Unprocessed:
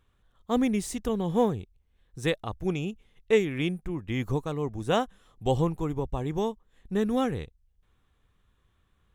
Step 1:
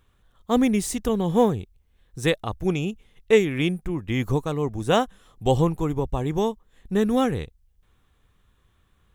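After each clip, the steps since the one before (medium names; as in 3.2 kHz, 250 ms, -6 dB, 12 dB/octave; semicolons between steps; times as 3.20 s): treble shelf 8.5 kHz +4.5 dB; trim +5 dB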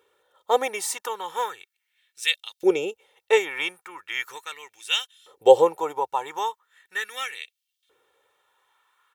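comb 2.2 ms, depth 67%; LFO high-pass saw up 0.38 Hz 430–3700 Hz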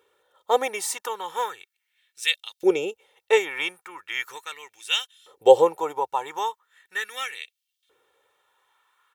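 no audible change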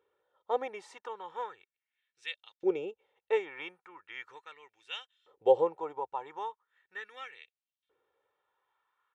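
tape spacing loss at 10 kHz 29 dB; trim -8 dB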